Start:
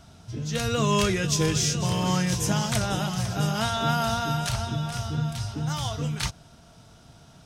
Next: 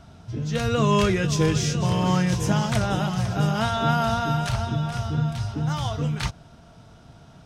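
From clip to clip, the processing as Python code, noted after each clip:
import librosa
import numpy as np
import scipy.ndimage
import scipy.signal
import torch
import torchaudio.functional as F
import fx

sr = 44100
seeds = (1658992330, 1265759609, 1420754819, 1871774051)

y = fx.high_shelf(x, sr, hz=4000.0, db=-11.5)
y = F.gain(torch.from_numpy(y), 3.5).numpy()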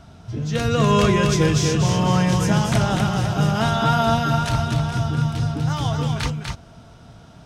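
y = x + 10.0 ** (-4.5 / 20.0) * np.pad(x, (int(246 * sr / 1000.0), 0))[:len(x)]
y = F.gain(torch.from_numpy(y), 2.5).numpy()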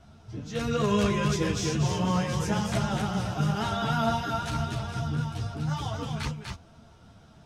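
y = fx.vibrato(x, sr, rate_hz=6.4, depth_cents=26.0)
y = fx.ensemble(y, sr)
y = F.gain(torch.from_numpy(y), -5.0).numpy()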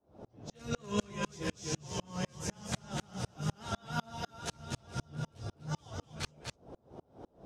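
y = fx.dynamic_eq(x, sr, hz=6900.0, q=0.91, threshold_db=-54.0, ratio=4.0, max_db=8)
y = fx.dmg_noise_band(y, sr, seeds[0], low_hz=48.0, high_hz=700.0, level_db=-41.0)
y = fx.tremolo_decay(y, sr, direction='swelling', hz=4.0, depth_db=37)
y = F.gain(torch.from_numpy(y), -2.5).numpy()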